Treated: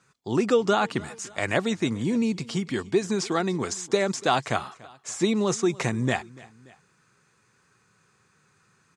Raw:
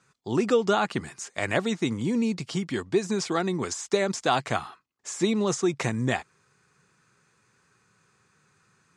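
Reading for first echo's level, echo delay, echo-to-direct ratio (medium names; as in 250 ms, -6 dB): -22.0 dB, 289 ms, -21.0 dB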